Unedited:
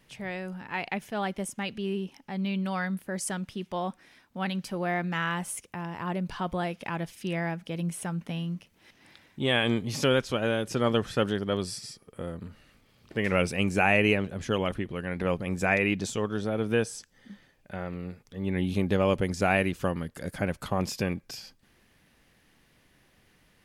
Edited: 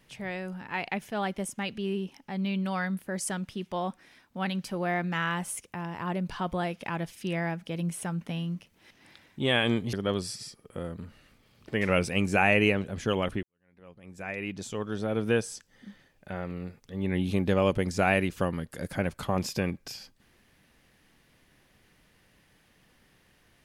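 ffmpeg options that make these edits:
-filter_complex "[0:a]asplit=3[a][b][c];[a]atrim=end=9.932[d];[b]atrim=start=11.358:end=14.86,asetpts=PTS-STARTPTS,afade=t=out:st=3.498:d=0.004:c=hsin[e];[c]atrim=start=14.86,asetpts=PTS-STARTPTS,afade=t=in:d=1.71:c=qua[f];[e][f]concat=n=2:v=0:a=1[g];[d][g]acrossfade=d=0.004:c1=hsin:c2=hsin"

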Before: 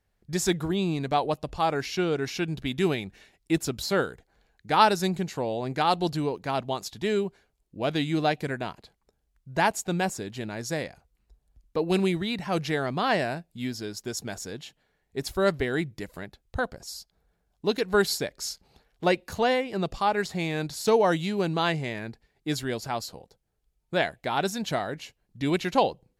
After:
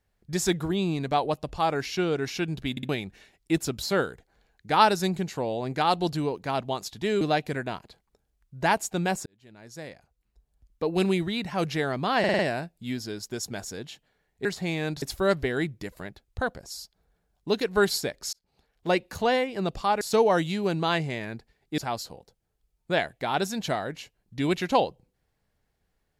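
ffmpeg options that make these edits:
-filter_complex "[0:a]asplit=15[a][b][c][d][e][f][g][h][i][j][k][l][m][n][o];[a]atrim=end=2.772[p];[b]atrim=start=2.708:end=2.772[q];[c]atrim=start=2.708:end=2.772[r];[d]atrim=start=2.888:end=7.212[s];[e]atrim=start=8.148:end=10.2,asetpts=PTS-STARTPTS,afade=t=out:st=2.048:d=0.004:c=hsin[t];[f]atrim=start=10.2:end=13.182,asetpts=PTS-STARTPTS,afade=t=in:d=1.75[u];[g]atrim=start=13.128:end=13.182[v];[h]atrim=start=13.128:end=13.182[w];[i]atrim=start=13.128:end=13.182[x];[j]atrim=start=13.128:end=15.192[y];[k]atrim=start=20.178:end=20.752[z];[l]atrim=start=15.188:end=18.5,asetpts=PTS-STARTPTS,afade=t=out:st=3.308:d=0.004:c=hsin[aa];[m]atrim=start=18.5:end=20.182,asetpts=PTS-STARTPTS,afade=t=in:d=0.66[ab];[n]atrim=start=20.748:end=22.522[ac];[o]atrim=start=22.808[ad];[p][q]acrossfade=d=0.004:c1=hsin:c2=hsin[ae];[ae][r]acrossfade=d=0.004:c1=hsin:c2=hsin[af];[af][s]acrossfade=d=0.004:c1=hsin:c2=hsin[ag];[t][u]concat=n=2:v=0:a=1[ah];[ag][ah]acrossfade=d=0.004:c1=hsin:c2=hsin[ai];[ai][v]acrossfade=d=0.004:c1=hsin:c2=hsin[aj];[aj][w]acrossfade=d=0.004:c1=hsin:c2=hsin[ak];[ak][x]acrossfade=d=0.004:c1=hsin:c2=hsin[al];[al][y]acrossfade=d=0.004:c1=hsin:c2=hsin[am];[am][z]acrossfade=d=0.004:c1=hsin:c2=hsin[an];[aa][ab]concat=n=2:v=0:a=1[ao];[an][ao]acrossfade=d=0.004:c1=hsin:c2=hsin[ap];[ap][ac]acrossfade=d=0.004:c1=hsin:c2=hsin[aq];[aq][ad]acrossfade=d=0.004:c1=hsin:c2=hsin"

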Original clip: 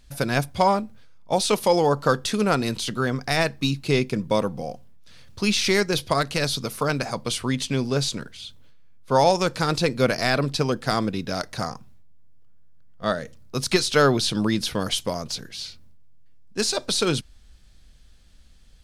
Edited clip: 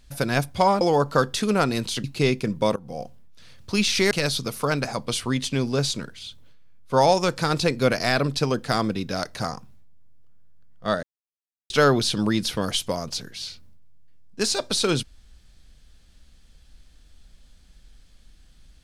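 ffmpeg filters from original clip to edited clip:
-filter_complex "[0:a]asplit=7[a][b][c][d][e][f][g];[a]atrim=end=0.812[h];[b]atrim=start=1.718:end=2.952[i];[c]atrim=start=3.728:end=4.45,asetpts=PTS-STARTPTS,afade=t=out:st=0.718:d=0.004:c=hsin:silence=0.0707946[j];[d]atrim=start=4.45:end=5.802,asetpts=PTS-STARTPTS,afade=t=in:d=0.25:silence=0.0707946[k];[e]atrim=start=6.288:end=13.21,asetpts=PTS-STARTPTS,afade=t=out:st=6.918:d=0.004:c=hsin[l];[f]atrim=start=13.21:end=13.88,asetpts=PTS-STARTPTS,volume=0[m];[g]atrim=start=13.88,asetpts=PTS-STARTPTS,afade=t=in:d=0.004:c=hsin[n];[h][i]acrossfade=d=0.004:c1=hsin:c2=hsin[o];[j][k]concat=n=2:v=0:a=1[p];[o][p]acrossfade=d=0.004:c1=hsin:c2=hsin[q];[l][m][n]concat=n=3:v=0:a=1[r];[q][r]acrossfade=d=0.004:c1=hsin:c2=hsin"

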